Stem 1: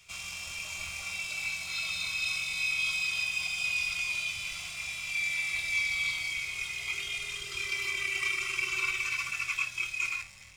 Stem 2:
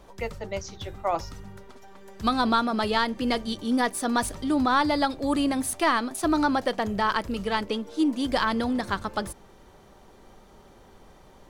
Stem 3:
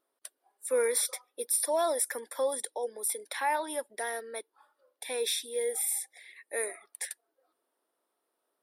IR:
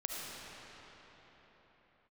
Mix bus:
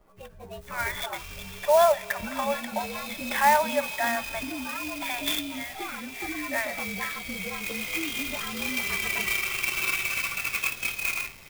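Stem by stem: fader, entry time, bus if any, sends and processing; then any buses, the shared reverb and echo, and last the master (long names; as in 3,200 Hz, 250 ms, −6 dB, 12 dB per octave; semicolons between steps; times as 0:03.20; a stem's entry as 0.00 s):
−3.5 dB, 1.05 s, no send, automatic ducking −9 dB, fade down 1.75 s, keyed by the third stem
−6.0 dB, 0.00 s, no send, partials spread apart or drawn together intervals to 113%; high-shelf EQ 4,600 Hz −8 dB; downward compressor, threshold −36 dBFS, peak gain reduction 15 dB
+2.0 dB, 0.00 s, send −23 dB, brick-wall band-pass 550–3,600 Hz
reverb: on, pre-delay 30 ms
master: automatic gain control gain up to 7 dB; converter with an unsteady clock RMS 0.031 ms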